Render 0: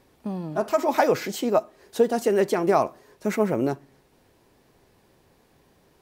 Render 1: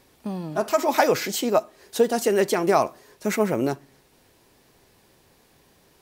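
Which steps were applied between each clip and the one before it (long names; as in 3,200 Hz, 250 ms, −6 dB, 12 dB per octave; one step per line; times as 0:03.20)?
high-shelf EQ 2,000 Hz +7.5 dB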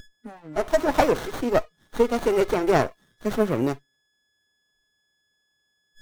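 steady tone 1,700 Hz −30 dBFS
noise reduction from a noise print of the clip's start 27 dB
windowed peak hold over 17 samples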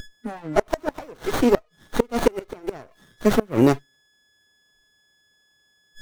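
gate with flip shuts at −13 dBFS, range −29 dB
level +8.5 dB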